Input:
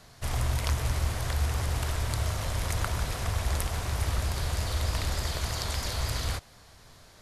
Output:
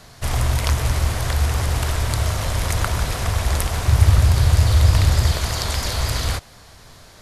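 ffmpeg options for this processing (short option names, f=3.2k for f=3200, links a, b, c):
-filter_complex "[0:a]asettb=1/sr,asplit=3[a][b][c];[a]atrim=end=3.874[d];[b]atrim=start=3.87:end=5.35,asetpts=PTS-STARTPTS,afade=t=in:d=0.004:c=qsin,afade=t=out:st=1.476:d=0.004:c=qsin,equalizer=f=100:t=o:w=1.2:g=11[e];[c]atrim=start=5.346[f];[d][e]acrossfade=d=0.004:c1=hsin:c2=qsin[g];[g][f]acrossfade=d=0.004:c1=qsin:c2=hsin,volume=8.5dB"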